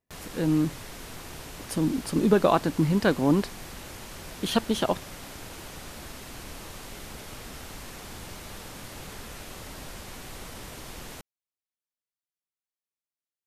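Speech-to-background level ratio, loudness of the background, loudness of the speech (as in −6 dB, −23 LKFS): 15.5 dB, −41.0 LKFS, −25.5 LKFS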